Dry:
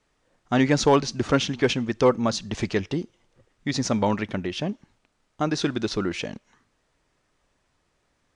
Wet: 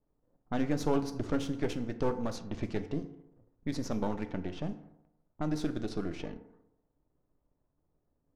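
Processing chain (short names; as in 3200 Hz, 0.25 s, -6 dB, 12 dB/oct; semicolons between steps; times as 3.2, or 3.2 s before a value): half-wave gain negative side -12 dB; in parallel at +2 dB: compressor, threshold -31 dBFS, peak gain reduction 16 dB; on the sum: EQ curve 180 Hz 0 dB, 2700 Hz -10 dB, 8000 Hz -7 dB; FDN reverb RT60 0.92 s, low-frequency decay 0.85×, high-frequency decay 0.55×, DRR 8 dB; low-pass opened by the level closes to 800 Hz, open at -20.5 dBFS; gain -8 dB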